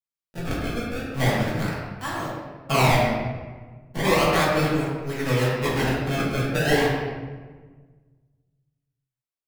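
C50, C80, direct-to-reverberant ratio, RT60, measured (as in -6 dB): -0.5 dB, 1.5 dB, -8.0 dB, 1.4 s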